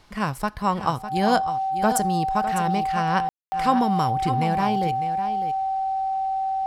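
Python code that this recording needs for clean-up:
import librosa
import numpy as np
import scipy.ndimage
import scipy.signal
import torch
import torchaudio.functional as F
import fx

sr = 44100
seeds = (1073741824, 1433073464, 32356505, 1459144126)

y = fx.notch(x, sr, hz=770.0, q=30.0)
y = fx.fix_ambience(y, sr, seeds[0], print_start_s=0.0, print_end_s=0.5, start_s=3.29, end_s=3.52)
y = fx.fix_echo_inverse(y, sr, delay_ms=603, level_db=-10.5)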